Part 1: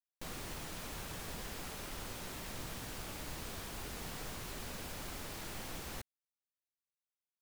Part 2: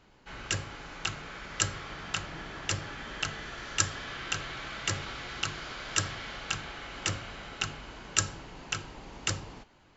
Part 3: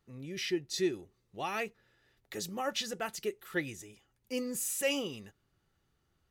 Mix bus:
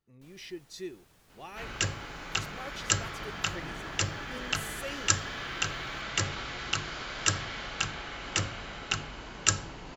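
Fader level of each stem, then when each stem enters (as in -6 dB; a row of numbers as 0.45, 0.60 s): -18.5, +2.0, -9.0 dB; 0.00, 1.30, 0.00 s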